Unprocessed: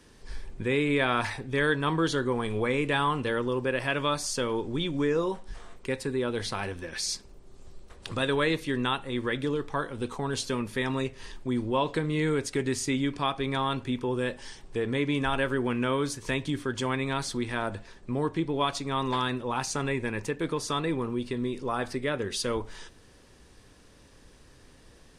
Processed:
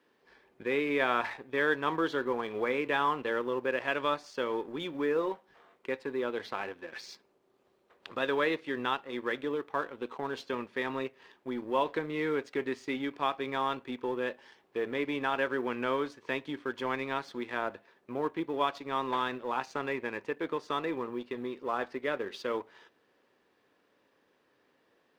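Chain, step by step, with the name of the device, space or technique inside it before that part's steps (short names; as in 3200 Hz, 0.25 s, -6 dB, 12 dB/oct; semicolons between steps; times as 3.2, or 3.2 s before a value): phone line with mismatched companding (BPF 340–3200 Hz; G.711 law mismatch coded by A); high shelf 4100 Hz -6 dB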